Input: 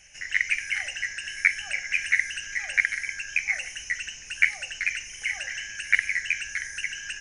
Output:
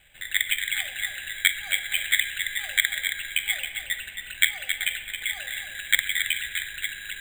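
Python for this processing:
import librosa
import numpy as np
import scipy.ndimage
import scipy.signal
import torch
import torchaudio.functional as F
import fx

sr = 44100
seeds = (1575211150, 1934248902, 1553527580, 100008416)

y = x + 10.0 ** (-7.5 / 20.0) * np.pad(x, (int(271 * sr / 1000.0), 0))[:len(x)]
y = np.repeat(scipy.signal.resample_poly(y, 1, 8), 8)[:len(y)]
y = fx.rev_spring(y, sr, rt60_s=3.7, pass_ms=(56, 60), chirp_ms=55, drr_db=11.5)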